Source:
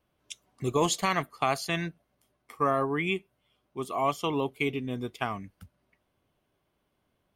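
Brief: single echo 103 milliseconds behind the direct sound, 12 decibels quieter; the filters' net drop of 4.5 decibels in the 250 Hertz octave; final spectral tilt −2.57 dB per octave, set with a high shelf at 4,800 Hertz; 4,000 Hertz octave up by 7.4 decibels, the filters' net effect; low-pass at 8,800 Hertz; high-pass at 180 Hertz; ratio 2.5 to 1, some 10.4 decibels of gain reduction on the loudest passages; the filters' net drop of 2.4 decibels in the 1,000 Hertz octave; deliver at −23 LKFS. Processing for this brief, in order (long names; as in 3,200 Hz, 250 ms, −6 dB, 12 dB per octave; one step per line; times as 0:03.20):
high-pass filter 180 Hz
low-pass filter 8,800 Hz
parametric band 250 Hz −4.5 dB
parametric band 1,000 Hz −3.5 dB
parametric band 4,000 Hz +6.5 dB
high-shelf EQ 4,800 Hz +7 dB
downward compressor 2.5 to 1, threshold −35 dBFS
single-tap delay 103 ms −12 dB
level +14 dB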